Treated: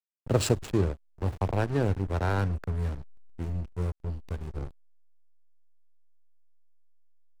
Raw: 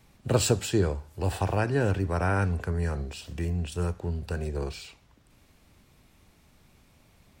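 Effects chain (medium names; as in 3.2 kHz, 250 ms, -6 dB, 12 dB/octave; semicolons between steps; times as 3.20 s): hysteresis with a dead band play -23 dBFS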